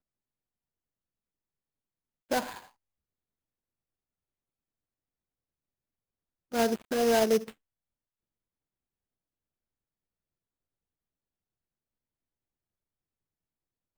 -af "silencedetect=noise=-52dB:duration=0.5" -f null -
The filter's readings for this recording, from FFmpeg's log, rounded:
silence_start: 0.00
silence_end: 2.30 | silence_duration: 2.30
silence_start: 2.68
silence_end: 6.52 | silence_duration: 3.84
silence_start: 7.52
silence_end: 13.97 | silence_duration: 6.45